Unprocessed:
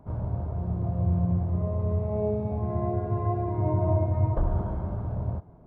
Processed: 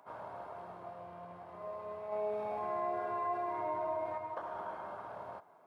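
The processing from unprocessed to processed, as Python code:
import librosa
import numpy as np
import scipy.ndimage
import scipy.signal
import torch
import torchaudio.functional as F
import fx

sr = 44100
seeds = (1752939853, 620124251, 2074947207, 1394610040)

y = fx.rider(x, sr, range_db=3, speed_s=0.5)
y = scipy.signal.sosfilt(scipy.signal.butter(2, 1100.0, 'highpass', fs=sr, output='sos'), y)
y = fx.env_flatten(y, sr, amount_pct=50, at=(2.12, 4.18))
y = y * librosa.db_to_amplitude(3.5)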